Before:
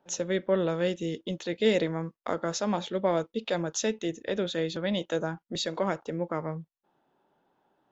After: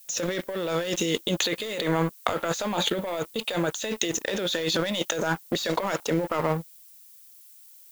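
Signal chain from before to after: tilt EQ +3 dB/octave; waveshaping leveller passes 3; gate -35 dBFS, range -19 dB; compressor with a negative ratio -27 dBFS, ratio -1; 1.10–3.91 s: peaking EQ 5.4 kHz -12 dB 0.22 oct; added noise violet -51 dBFS

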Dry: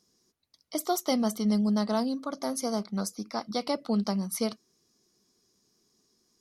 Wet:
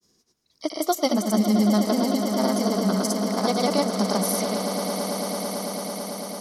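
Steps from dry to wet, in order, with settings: granulator, pitch spread up and down by 0 st; on a send: echo with a slow build-up 111 ms, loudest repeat 8, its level -11.5 dB; on the sum: trim +6.5 dB

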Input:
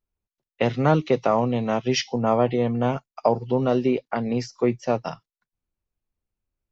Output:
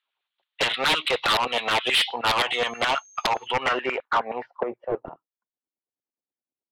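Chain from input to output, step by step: resonant high shelf 4.4 kHz -9.5 dB, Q 3; in parallel at +1 dB: peak limiter -13 dBFS, peak gain reduction 7.5 dB; 2.52–3.46 s: on the sum: whistle 6.4 kHz -44 dBFS; LFO high-pass saw down 9.5 Hz 660–1700 Hz; wavefolder -14.5 dBFS; low-pass sweep 4 kHz -> 280 Hz, 3.27–5.25 s; saturation -15.5 dBFS, distortion -14 dB

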